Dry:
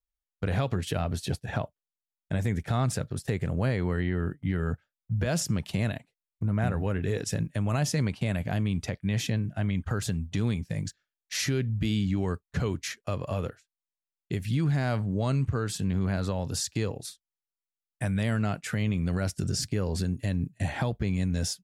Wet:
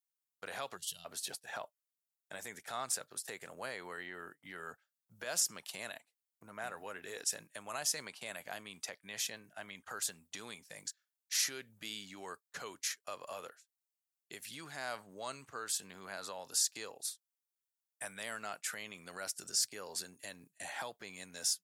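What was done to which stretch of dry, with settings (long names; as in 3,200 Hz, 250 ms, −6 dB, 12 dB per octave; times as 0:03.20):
0:00.77–0:01.05: gain on a spectral selection 200–2,700 Hz −23 dB
whole clip: high-pass filter 1,300 Hz 12 dB per octave; parametric band 2,400 Hz −11.5 dB 2.4 octaves; level +5 dB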